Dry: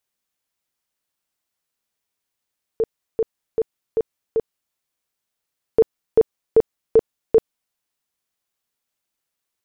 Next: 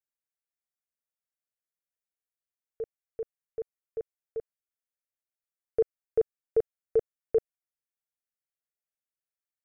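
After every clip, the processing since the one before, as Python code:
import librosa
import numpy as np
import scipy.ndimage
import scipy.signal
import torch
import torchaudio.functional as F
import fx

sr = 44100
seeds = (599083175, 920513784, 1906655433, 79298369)

y = fx.fixed_phaser(x, sr, hz=970.0, stages=6)
y = fx.upward_expand(y, sr, threshold_db=-28.0, expansion=1.5)
y = F.gain(torch.from_numpy(y), -7.5).numpy()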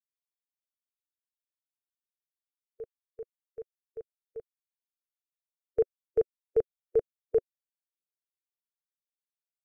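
y = fx.bin_expand(x, sr, power=1.5)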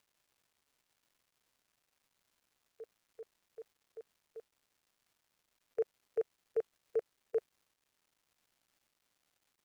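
y = fx.highpass(x, sr, hz=1300.0, slope=6)
y = fx.dmg_crackle(y, sr, seeds[0], per_s=480.0, level_db=-65.0)
y = F.gain(torch.from_numpy(y), 1.5).numpy()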